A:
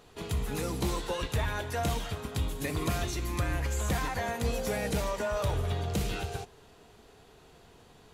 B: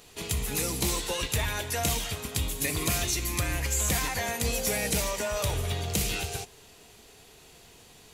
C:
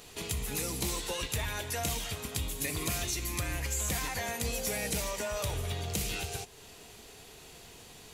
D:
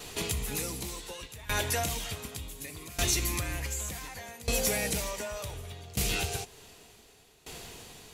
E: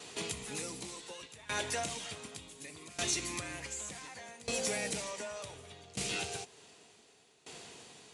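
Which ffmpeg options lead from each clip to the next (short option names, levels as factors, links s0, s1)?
-af "aexciter=amount=2.9:drive=3.6:freq=2000"
-af "acompressor=threshold=0.00562:ratio=1.5,volume=1.26"
-af "alimiter=limit=0.0944:level=0:latency=1:release=247,aeval=exprs='val(0)*pow(10,-20*if(lt(mod(0.67*n/s,1),2*abs(0.67)/1000),1-mod(0.67*n/s,1)/(2*abs(0.67)/1000),(mod(0.67*n/s,1)-2*abs(0.67)/1000)/(1-2*abs(0.67)/1000))/20)':c=same,volume=2.66"
-af "highpass=160,aresample=22050,aresample=44100,volume=0.596"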